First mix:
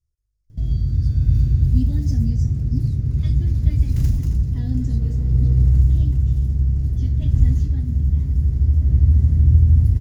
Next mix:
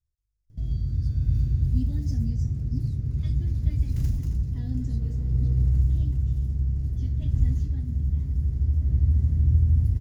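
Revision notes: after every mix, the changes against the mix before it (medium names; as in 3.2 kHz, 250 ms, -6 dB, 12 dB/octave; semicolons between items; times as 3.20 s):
speech -5.5 dB; background -7.0 dB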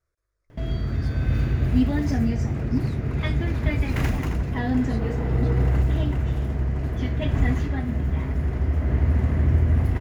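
master: remove FFT filter 110 Hz 0 dB, 800 Hz -28 dB, 2.3 kHz -26 dB, 5.1 kHz -7 dB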